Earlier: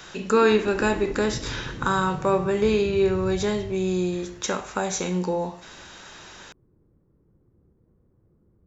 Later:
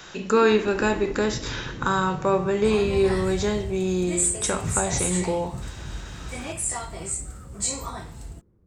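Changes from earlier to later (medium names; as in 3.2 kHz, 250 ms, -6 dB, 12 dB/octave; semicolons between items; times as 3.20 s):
first sound: remove Gaussian low-pass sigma 2.9 samples; second sound: unmuted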